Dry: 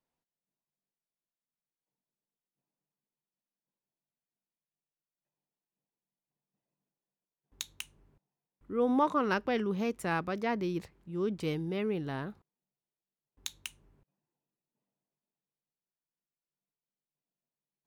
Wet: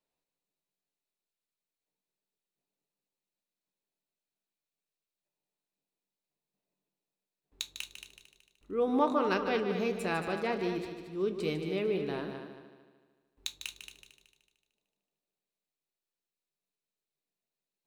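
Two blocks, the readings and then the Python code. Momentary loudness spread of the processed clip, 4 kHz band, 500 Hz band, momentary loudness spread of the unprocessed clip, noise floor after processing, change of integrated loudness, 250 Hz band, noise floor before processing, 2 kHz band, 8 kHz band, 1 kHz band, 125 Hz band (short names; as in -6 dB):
16 LU, +3.5 dB, +2.0 dB, 15 LU, under -85 dBFS, 0.0 dB, -1.0 dB, under -85 dBFS, 0.0 dB, -0.5 dB, -0.5 dB, -3.0 dB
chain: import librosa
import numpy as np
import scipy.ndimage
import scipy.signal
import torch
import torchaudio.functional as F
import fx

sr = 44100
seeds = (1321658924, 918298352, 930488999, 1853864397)

y = fx.graphic_eq_31(x, sr, hz=(125, 400, 630, 2500, 4000, 8000), db=(-11, 6, 4, 6, 8, 3))
y = fx.echo_heads(y, sr, ms=75, heads='second and third', feedback_pct=42, wet_db=-9.5)
y = fx.room_shoebox(y, sr, seeds[0], volume_m3=120.0, walls='furnished', distance_m=0.44)
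y = F.gain(torch.from_numpy(y), -3.0).numpy()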